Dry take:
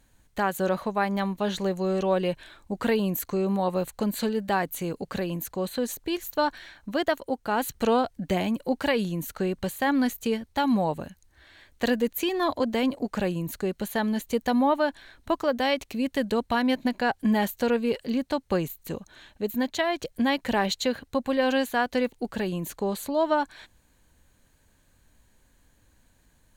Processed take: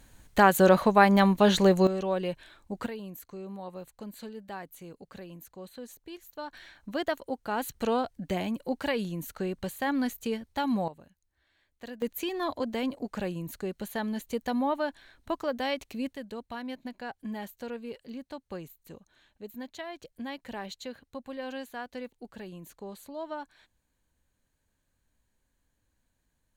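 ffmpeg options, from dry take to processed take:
-af "asetnsamples=n=441:p=0,asendcmd='1.87 volume volume -5dB;2.86 volume volume -15dB;6.53 volume volume -5dB;10.88 volume volume -18dB;12.02 volume volume -6dB;16.13 volume volume -14dB',volume=2.11"

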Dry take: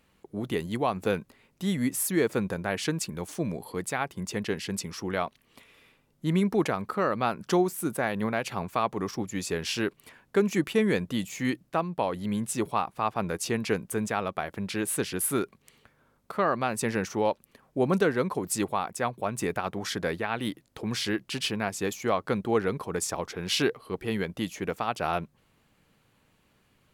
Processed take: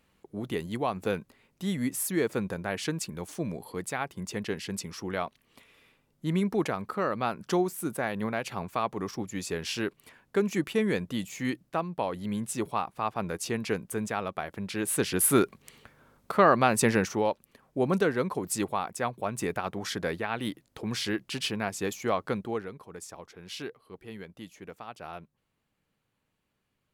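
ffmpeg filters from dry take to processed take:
-af "volume=1.88,afade=t=in:st=14.74:d=0.62:silence=0.398107,afade=t=out:st=16.83:d=0.43:silence=0.446684,afade=t=out:st=22.24:d=0.46:silence=0.266073"

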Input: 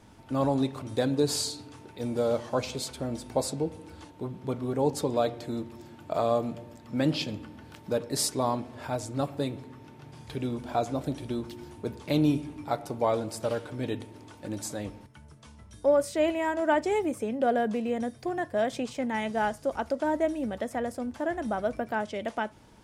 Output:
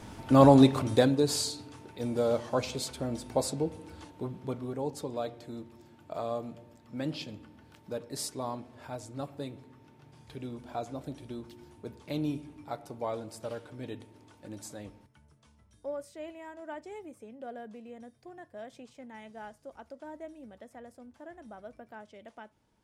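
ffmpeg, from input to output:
-af "volume=2.66,afade=t=out:st=0.77:d=0.41:silence=0.334965,afade=t=out:st=4.23:d=0.62:silence=0.421697,afade=t=out:st=14.81:d=1.37:silence=0.375837"

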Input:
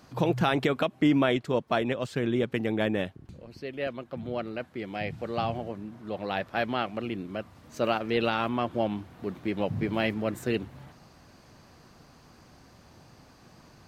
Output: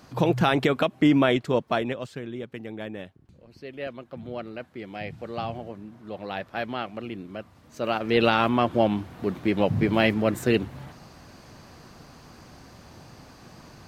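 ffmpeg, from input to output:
-af "volume=8.41,afade=t=out:st=1.54:d=0.71:silence=0.251189,afade=t=in:st=3.3:d=0.41:silence=0.473151,afade=t=in:st=7.83:d=0.41:silence=0.375837"

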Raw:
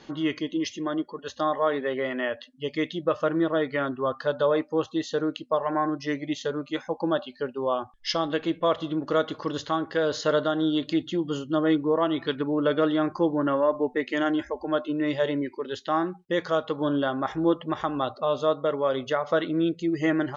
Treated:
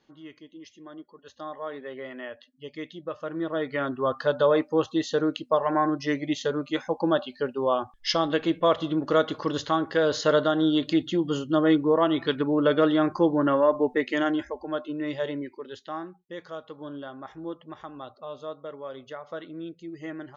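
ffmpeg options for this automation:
-af "volume=1.26,afade=t=in:st=0.6:d=1.41:silence=0.375837,afade=t=in:st=3.25:d=0.94:silence=0.266073,afade=t=out:st=13.97:d=0.7:silence=0.473151,afade=t=out:st=15.29:d=0.92:silence=0.375837"

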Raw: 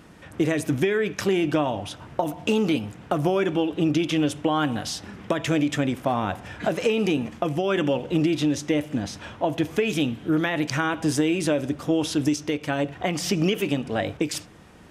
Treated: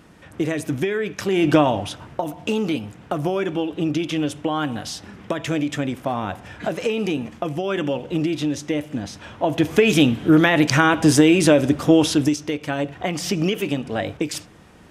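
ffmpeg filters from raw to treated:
-af "volume=7.08,afade=t=in:st=1.29:d=0.24:silence=0.375837,afade=t=out:st=1.53:d=0.66:silence=0.375837,afade=t=in:st=9.27:d=0.64:silence=0.354813,afade=t=out:st=11.96:d=0.41:silence=0.421697"

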